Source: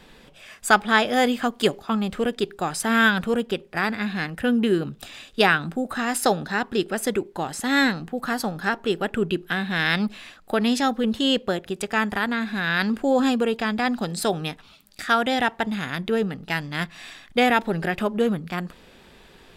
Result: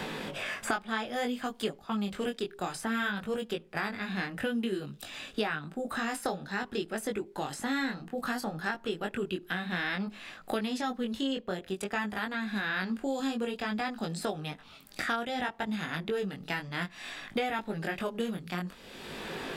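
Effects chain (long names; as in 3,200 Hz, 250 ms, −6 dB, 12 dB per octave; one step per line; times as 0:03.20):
chorus effect 0.57 Hz, delay 18.5 ms, depth 3.9 ms
multiband upward and downward compressor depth 100%
level −8 dB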